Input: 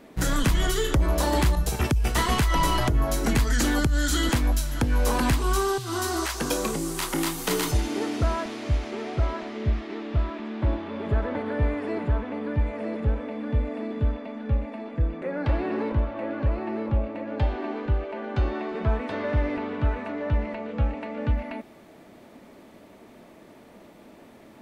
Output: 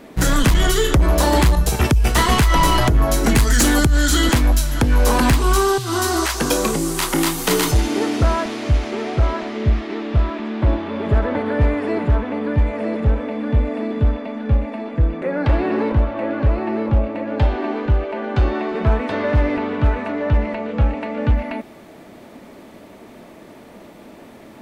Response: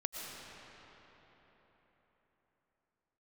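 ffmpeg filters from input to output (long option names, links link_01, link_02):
-filter_complex "[0:a]asettb=1/sr,asplit=3[link_01][link_02][link_03];[link_01]atrim=end=3.364[link_04];[link_02]atrim=start=3.36:end=3.86,asetpts=PTS-STARTPTS,afade=type=in:duration=0.004:curve=qsin,afade=type=out:start_time=0.496:duration=0.004:curve=qsin,equalizer=frequency=9800:width=0.81:gain=6.5[link_05];[link_03]atrim=start=3.856[link_06];[link_04][link_05]acrossfade=duration=0.004:curve1=hsin:curve2=qsin[link_07];[link_07][link_06]acrossfade=duration=0.004:curve1=qsin:curve2=hsin,volume=17dB,asoftclip=hard,volume=-17dB,volume=8dB"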